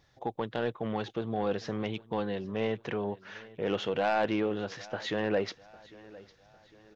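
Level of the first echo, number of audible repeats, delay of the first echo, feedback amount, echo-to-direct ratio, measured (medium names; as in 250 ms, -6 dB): -21.0 dB, 3, 804 ms, 45%, -20.0 dB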